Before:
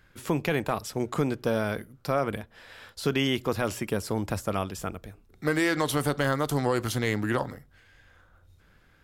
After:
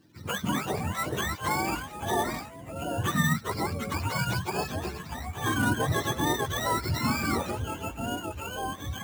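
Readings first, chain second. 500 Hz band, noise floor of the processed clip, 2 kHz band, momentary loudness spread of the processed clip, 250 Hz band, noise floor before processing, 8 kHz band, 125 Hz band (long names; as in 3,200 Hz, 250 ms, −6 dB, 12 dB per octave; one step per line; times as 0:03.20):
−5.0 dB, −44 dBFS, +1.5 dB, 8 LU, −2.0 dB, −61 dBFS, +3.5 dB, +1.0 dB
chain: frequency axis turned over on the octave scale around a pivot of 700 Hz
delay with pitch and tempo change per echo 184 ms, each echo −4 semitones, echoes 3, each echo −6 dB
sample-rate reduction 9,600 Hz, jitter 0%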